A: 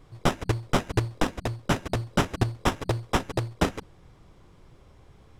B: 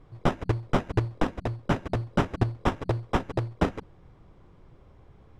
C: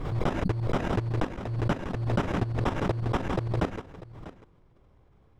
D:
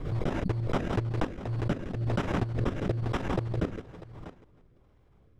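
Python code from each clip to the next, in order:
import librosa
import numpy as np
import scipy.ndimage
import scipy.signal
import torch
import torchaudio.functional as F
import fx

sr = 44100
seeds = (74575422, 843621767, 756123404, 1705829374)

y1 = fx.lowpass(x, sr, hz=1600.0, slope=6)
y2 = fx.level_steps(y1, sr, step_db=12)
y2 = y2 + 10.0 ** (-16.0 / 20.0) * np.pad(y2, (int(644 * sr / 1000.0), 0))[:len(y2)]
y2 = fx.pre_swell(y2, sr, db_per_s=41.0)
y3 = fx.rotary_switch(y2, sr, hz=5.0, then_hz=1.1, switch_at_s=0.84)
y3 = fx.echo_feedback(y3, sr, ms=316, feedback_pct=36, wet_db=-22)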